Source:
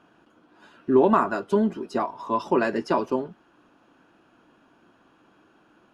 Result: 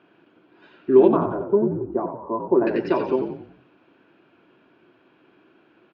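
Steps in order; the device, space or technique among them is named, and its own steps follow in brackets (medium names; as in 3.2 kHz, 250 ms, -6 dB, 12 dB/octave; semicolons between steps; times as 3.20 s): 1.08–2.67 s: low-pass 1.1 kHz 24 dB/octave; frequency-shifting delay pedal into a guitar cabinet (frequency-shifting echo 90 ms, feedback 46%, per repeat -52 Hz, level -7 dB; cabinet simulation 110–4200 Hz, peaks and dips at 220 Hz -4 dB, 370 Hz +7 dB, 830 Hz -4 dB, 1.2 kHz -4 dB, 2.3 kHz +6 dB)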